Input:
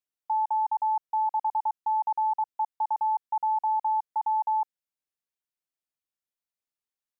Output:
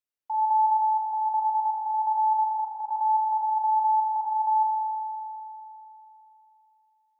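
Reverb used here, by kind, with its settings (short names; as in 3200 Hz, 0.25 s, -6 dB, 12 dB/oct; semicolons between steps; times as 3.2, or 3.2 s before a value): spring tank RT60 3.2 s, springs 40 ms, chirp 80 ms, DRR -0.5 dB; gain -3.5 dB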